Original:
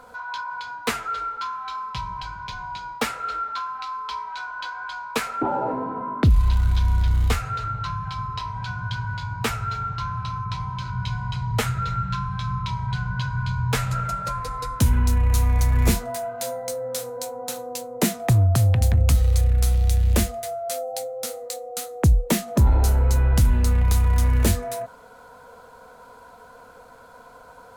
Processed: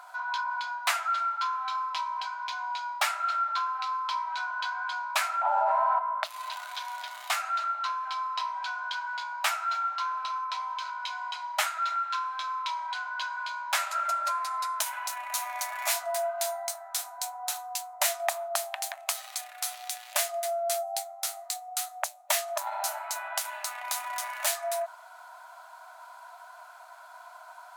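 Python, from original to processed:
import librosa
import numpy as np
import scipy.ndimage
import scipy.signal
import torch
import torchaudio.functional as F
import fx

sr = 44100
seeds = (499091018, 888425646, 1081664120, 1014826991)

y = fx.brickwall_highpass(x, sr, low_hz=580.0)
y = fx.env_flatten(y, sr, amount_pct=100, at=(5.57, 5.99))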